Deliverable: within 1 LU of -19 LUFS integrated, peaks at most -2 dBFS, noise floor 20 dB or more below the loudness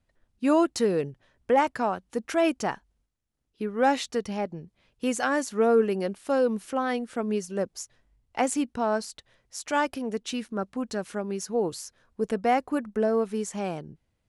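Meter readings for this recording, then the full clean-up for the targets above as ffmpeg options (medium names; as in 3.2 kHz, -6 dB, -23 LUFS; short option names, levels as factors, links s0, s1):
loudness -27.5 LUFS; peak level -11.0 dBFS; loudness target -19.0 LUFS
-> -af "volume=2.66"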